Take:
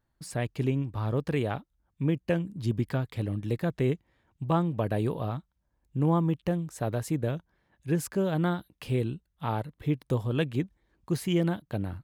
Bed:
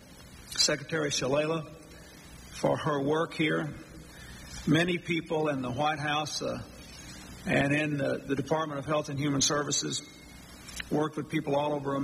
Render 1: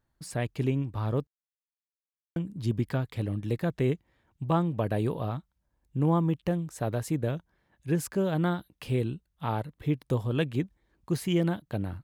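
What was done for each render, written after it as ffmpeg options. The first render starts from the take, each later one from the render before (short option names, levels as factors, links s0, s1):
-filter_complex "[0:a]asplit=3[s0][s1][s2];[s0]atrim=end=1.27,asetpts=PTS-STARTPTS,afade=t=out:st=1.266:d=0.004:c=hsin[s3];[s1]atrim=start=1.27:end=2.36,asetpts=PTS-STARTPTS,volume=0[s4];[s2]atrim=start=2.36,asetpts=PTS-STARTPTS,afade=t=in:d=0.004:c=hsin[s5];[s3][s4][s5]concat=n=3:v=0:a=1"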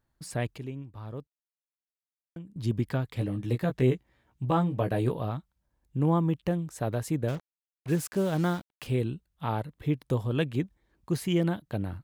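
-filter_complex "[0:a]asettb=1/sr,asplit=3[s0][s1][s2];[s0]atrim=end=3.154[s3];[s1]atrim=start=3.15:end=5.12,asetpts=PTS-STARTPTS,afade=t=in:d=0.004:c=qsin,afade=t=out:st=1.966:d=0.004:c=qsin,asplit=2[s4][s5];[s5]adelay=16,volume=0.562[s6];[s4][s6]amix=inputs=2:normalize=0,atrim=end_sample=86877[s7];[s2]atrim=start=5.116[s8];[s3][s7]acrossfade=d=0.004:c1=hsin:c2=qsin[s9];[s9][s8]acrossfade=d=0.004:c1=qsin:c2=hsin,asettb=1/sr,asplit=3[s10][s11][s12];[s10]atrim=end=7.284[s13];[s11]atrim=start=7.28:end=8.87,asetpts=PTS-STARTPTS,afade=t=in:d=0.004:c=qsin,afade=t=out:st=1.586:d=0.004:c=qsin,acrusher=bits=6:mix=0:aa=0.5[s14];[s12]atrim=start=8.866[s15];[s13][s14]acrossfade=d=0.004:c1=hsin:c2=qsin[s16];[s16][s15]acrossfade=d=0.004:c1=qsin:c2=hsin,asplit=3[s17][s18][s19];[s17]atrim=end=0.582[s20];[s18]atrim=start=0.578:end=2.562,asetpts=PTS-STARTPTS,volume=0.299[s21];[s19]atrim=start=2.558[s22];[s20][s21]acrossfade=d=0.004:c1=hsin:c2=hsin[s23];[s23][s22]acrossfade=d=0.004:c1=hsin:c2=hsin"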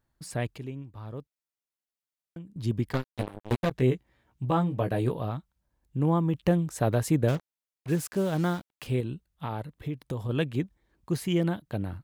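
-filter_complex "[0:a]asplit=3[s0][s1][s2];[s0]afade=t=out:st=2.92:d=0.02[s3];[s1]acrusher=bits=3:mix=0:aa=0.5,afade=t=in:st=2.92:d=0.02,afade=t=out:st=3.7:d=0.02[s4];[s2]afade=t=in:st=3.7:d=0.02[s5];[s3][s4][s5]amix=inputs=3:normalize=0,asettb=1/sr,asplit=3[s6][s7][s8];[s6]atrim=end=9.004[s9];[s7]atrim=start=9:end=10.29,asetpts=PTS-STARTPTS,afade=t=in:d=0.004:c=qsin,afade=t=out:st=1.286:d=0.004:c=qsin,acompressor=threshold=0.0398:ratio=6:attack=3.2:release=140:knee=1:detection=peak[s10];[s8]atrim=start=10.286[s11];[s9][s10]acrossfade=d=0.004:c1=hsin:c2=qsin[s12];[s12][s11]acrossfade=d=0.004:c1=qsin:c2=hsin,asplit=3[s13][s14][s15];[s13]atrim=end=6.342[s16];[s14]atrim=start=6.338:end=7.372,asetpts=PTS-STARTPTS,volume=1.78[s17];[s15]atrim=start=7.368[s18];[s16][s17]acrossfade=d=0.004:c1=hsin:c2=hsin[s19];[s19][s18]acrossfade=d=0.004:c1=hsin:c2=hsin"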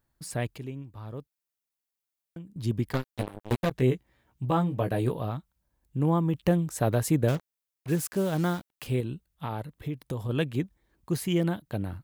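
-af "highshelf=f=10000:g=7.5"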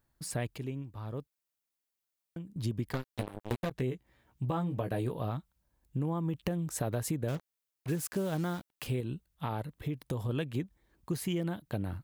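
-af "alimiter=limit=0.133:level=0:latency=1:release=184,acompressor=threshold=0.0316:ratio=4"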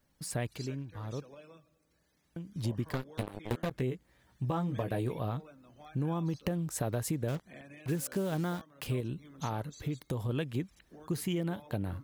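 -filter_complex "[1:a]volume=0.0562[s0];[0:a][s0]amix=inputs=2:normalize=0"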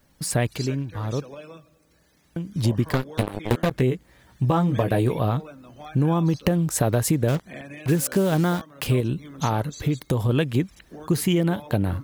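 -af "volume=3.98"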